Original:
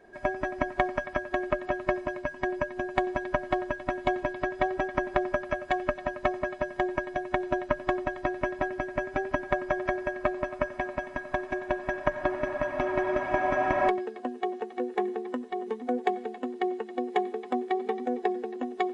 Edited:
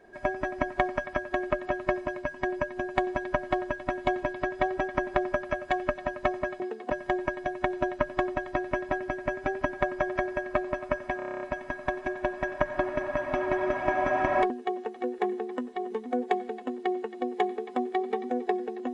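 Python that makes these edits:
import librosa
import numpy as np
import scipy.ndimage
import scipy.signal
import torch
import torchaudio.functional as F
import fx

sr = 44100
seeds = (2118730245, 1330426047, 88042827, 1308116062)

y = fx.edit(x, sr, fx.stutter(start_s=10.87, slice_s=0.03, count=9),
    fx.move(start_s=13.96, length_s=0.3, to_s=6.6), tone=tone)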